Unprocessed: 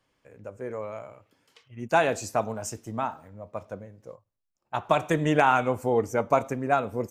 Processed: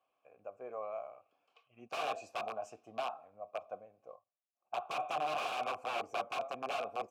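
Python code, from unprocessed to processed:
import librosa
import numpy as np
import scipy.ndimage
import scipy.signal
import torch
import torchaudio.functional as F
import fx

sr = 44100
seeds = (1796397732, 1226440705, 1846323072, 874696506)

y = (np.mod(10.0 ** (22.0 / 20.0) * x + 1.0, 2.0) - 1.0) / 10.0 ** (22.0 / 20.0)
y = fx.vowel_filter(y, sr, vowel='a')
y = y * librosa.db_to_amplitude(4.0)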